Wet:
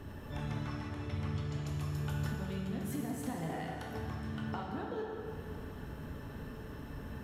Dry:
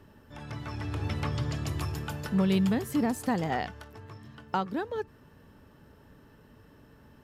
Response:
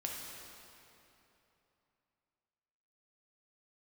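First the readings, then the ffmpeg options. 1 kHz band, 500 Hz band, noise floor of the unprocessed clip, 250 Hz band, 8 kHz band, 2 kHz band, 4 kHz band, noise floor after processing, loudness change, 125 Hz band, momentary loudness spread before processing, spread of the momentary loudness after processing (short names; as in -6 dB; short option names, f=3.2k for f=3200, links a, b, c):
-9.0 dB, -7.0 dB, -57 dBFS, -9.0 dB, -6.5 dB, -6.5 dB, -8.5 dB, -46 dBFS, -9.0 dB, -4.0 dB, 21 LU, 8 LU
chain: -filter_complex "[0:a]lowshelf=f=98:g=6,bandreject=f=4.8k:w=11,alimiter=limit=-24dB:level=0:latency=1:release=252,acompressor=threshold=-47dB:ratio=5[a];[1:a]atrim=start_sample=2205,asetrate=52920,aresample=44100[b];[a][b]afir=irnorm=-1:irlink=0,volume=10dB"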